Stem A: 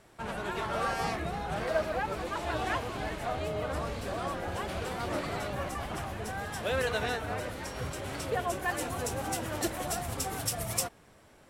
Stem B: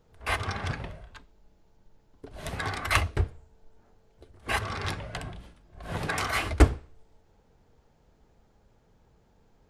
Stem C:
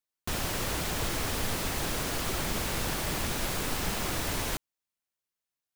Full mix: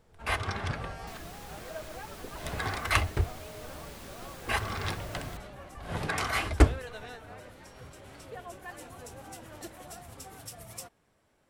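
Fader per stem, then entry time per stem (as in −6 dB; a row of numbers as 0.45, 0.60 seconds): −12.0, −1.5, −16.0 decibels; 0.00, 0.00, 0.80 seconds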